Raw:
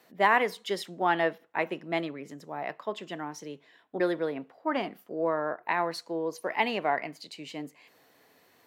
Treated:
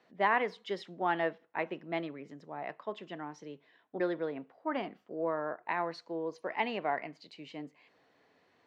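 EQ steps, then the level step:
high-frequency loss of the air 150 metres
−4.5 dB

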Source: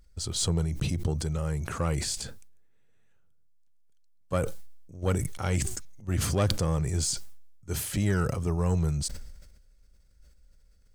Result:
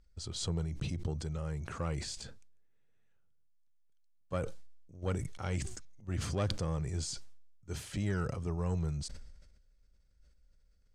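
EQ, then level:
low-pass filter 6,700 Hz 12 dB per octave
−7.5 dB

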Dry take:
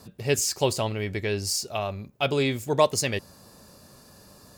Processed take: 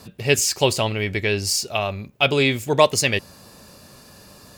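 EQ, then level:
parametric band 2,600 Hz +6 dB 1.1 octaves
+4.5 dB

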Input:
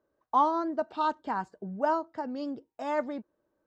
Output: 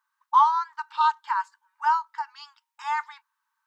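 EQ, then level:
linear-phase brick-wall high-pass 850 Hz
+7.5 dB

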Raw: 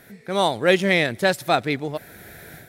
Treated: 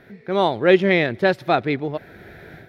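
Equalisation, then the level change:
high-frequency loss of the air 310 metres
parametric band 370 Hz +5 dB 0.33 octaves
high-shelf EQ 6,600 Hz +9.5 dB
+2.0 dB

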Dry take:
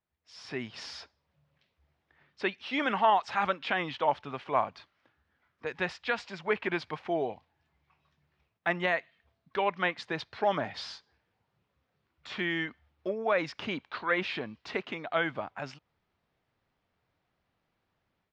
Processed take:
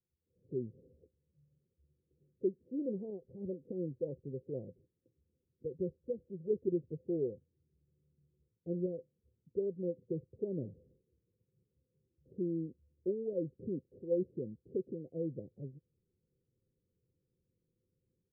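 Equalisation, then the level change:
Chebyshev low-pass with heavy ripple 530 Hz, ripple 6 dB
+2.0 dB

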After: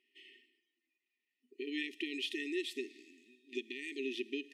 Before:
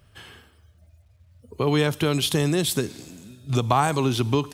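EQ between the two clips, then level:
formant filter e
linear-phase brick-wall high-pass 230 Hz
linear-phase brick-wall band-stop 410–1,800 Hz
+3.5 dB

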